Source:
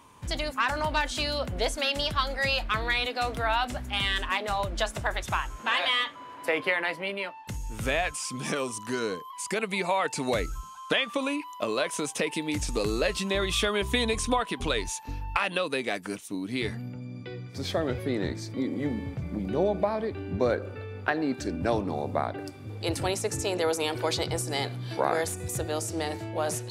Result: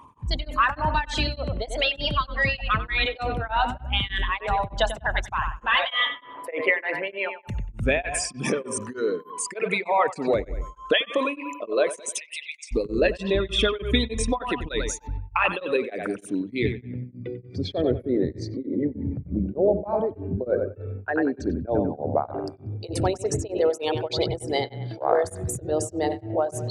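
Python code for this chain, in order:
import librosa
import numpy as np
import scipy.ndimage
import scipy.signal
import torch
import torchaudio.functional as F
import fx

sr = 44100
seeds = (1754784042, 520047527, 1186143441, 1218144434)

p1 = fx.envelope_sharpen(x, sr, power=2.0)
p2 = fx.ellip_highpass(p1, sr, hz=2100.0, order=4, stop_db=70, at=(11.98, 12.71), fade=0.02)
p3 = fx.rider(p2, sr, range_db=3, speed_s=2.0)
p4 = p2 + (p3 * librosa.db_to_amplitude(0.0))
p5 = fx.echo_bbd(p4, sr, ms=94, stages=2048, feedback_pct=38, wet_db=-9.0)
y = p5 * np.abs(np.cos(np.pi * 3.3 * np.arange(len(p5)) / sr))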